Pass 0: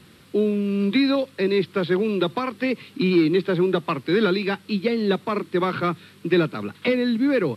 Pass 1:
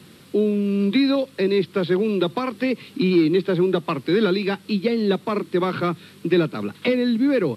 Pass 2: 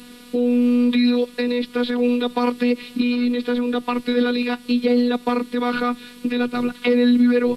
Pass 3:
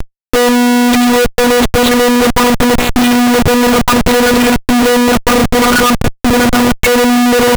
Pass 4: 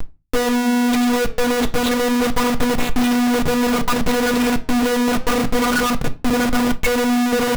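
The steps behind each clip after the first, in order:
HPF 110 Hz; bell 1600 Hz -4 dB 2.1 oct; in parallel at -2.5 dB: compressor, threshold -29 dBFS, peak gain reduction 14 dB
limiter -16.5 dBFS, peak gain reduction 8.5 dB; robotiser 244 Hz; gain +7.5 dB
overdrive pedal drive 23 dB, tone 1700 Hz, clips at -4.5 dBFS; Schmitt trigger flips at -23.5 dBFS; gain +6.5 dB
on a send at -8.5 dB: reverb RT60 0.30 s, pre-delay 4 ms; on the sum: flange 0.3 Hz, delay 2.7 ms, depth 9.3 ms, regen -88%; gain -6 dB

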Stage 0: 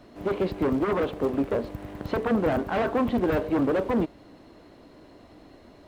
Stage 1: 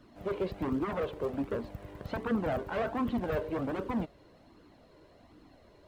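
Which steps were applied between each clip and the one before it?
flange 1.3 Hz, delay 0.6 ms, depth 1.6 ms, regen -27%; gain -3.5 dB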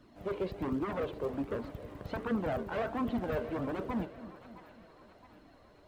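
split-band echo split 680 Hz, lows 0.273 s, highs 0.668 s, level -14 dB; gain -2 dB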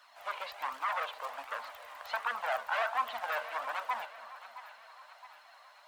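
inverse Chebyshev high-pass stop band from 400 Hz, stop band 40 dB; gain +9 dB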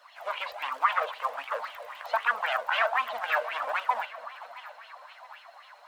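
LFO bell 3.8 Hz 470–3200 Hz +15 dB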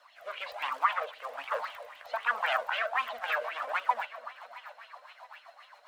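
rotary speaker horn 1.1 Hz, later 7.5 Hz, at 2.69

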